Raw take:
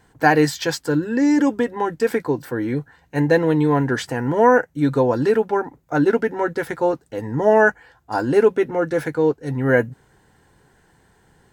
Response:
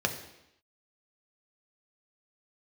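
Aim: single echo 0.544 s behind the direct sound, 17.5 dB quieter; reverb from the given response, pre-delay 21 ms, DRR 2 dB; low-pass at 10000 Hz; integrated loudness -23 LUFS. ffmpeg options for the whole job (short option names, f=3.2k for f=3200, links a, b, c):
-filter_complex "[0:a]lowpass=10k,aecho=1:1:544:0.133,asplit=2[a][b];[1:a]atrim=start_sample=2205,adelay=21[c];[b][c]afir=irnorm=-1:irlink=0,volume=-11dB[d];[a][d]amix=inputs=2:normalize=0,volume=-6dB"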